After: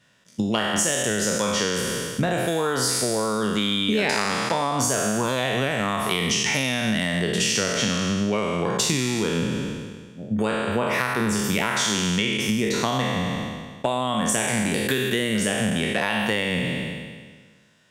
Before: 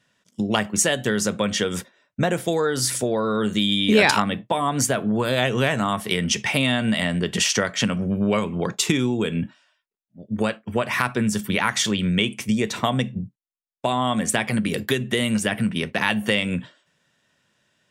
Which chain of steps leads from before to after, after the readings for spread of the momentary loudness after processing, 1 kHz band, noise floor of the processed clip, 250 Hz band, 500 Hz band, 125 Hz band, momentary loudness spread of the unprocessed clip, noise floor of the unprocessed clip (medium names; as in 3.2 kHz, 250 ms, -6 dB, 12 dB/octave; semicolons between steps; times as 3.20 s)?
6 LU, -0.5 dB, -50 dBFS, -1.5 dB, -0.5 dB, -1.5 dB, 6 LU, -74 dBFS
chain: spectral sustain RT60 1.56 s; compression 4:1, threshold -24 dBFS, peak gain reduction 14 dB; trim +3 dB